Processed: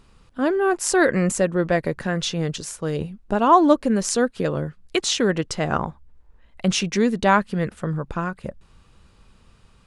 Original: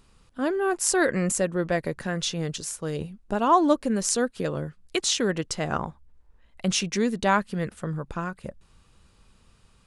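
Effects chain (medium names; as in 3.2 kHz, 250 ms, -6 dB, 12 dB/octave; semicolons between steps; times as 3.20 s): treble shelf 5.6 kHz -8 dB; trim +5 dB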